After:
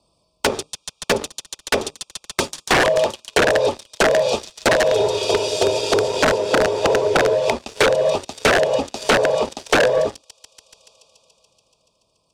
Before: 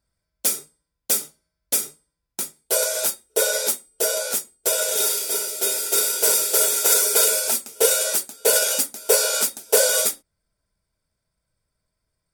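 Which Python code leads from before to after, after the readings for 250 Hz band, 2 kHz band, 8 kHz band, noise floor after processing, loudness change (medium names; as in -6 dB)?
+15.5 dB, +9.0 dB, -11.0 dB, -66 dBFS, +0.5 dB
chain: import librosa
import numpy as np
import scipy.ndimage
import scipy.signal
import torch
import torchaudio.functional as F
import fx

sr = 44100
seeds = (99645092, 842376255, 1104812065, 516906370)

p1 = fx.octave_divider(x, sr, octaves=2, level_db=-2.0)
p2 = fx.highpass(p1, sr, hz=400.0, slope=6)
p3 = fx.spec_box(p2, sr, start_s=2.52, length_s=0.36, low_hz=1000.0, high_hz=3400.0, gain_db=12)
p4 = fx.high_shelf(p3, sr, hz=2800.0, db=-5.0)
p5 = fx.env_lowpass_down(p4, sr, base_hz=1000.0, full_db=-20.5)
p6 = scipy.signal.sosfilt(scipy.signal.cheby1(4, 1.0, [1200.0, 2500.0], 'bandstop', fs=sr, output='sos'), p5)
p7 = fx.echo_wet_highpass(p6, sr, ms=143, feedback_pct=79, hz=3800.0, wet_db=-8.0)
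p8 = fx.leveller(p7, sr, passes=3)
p9 = fx.rider(p8, sr, range_db=4, speed_s=2.0)
p10 = p8 + F.gain(torch.from_numpy(p9), 2.5).numpy()
p11 = (np.mod(10.0 ** (7.0 / 20.0) * p10 + 1.0, 2.0) - 1.0) / 10.0 ** (7.0 / 20.0)
p12 = fx.air_absorb(p11, sr, metres=65.0)
p13 = fx.band_squash(p12, sr, depth_pct=70)
y = F.gain(torch.from_numpy(p13), -2.5).numpy()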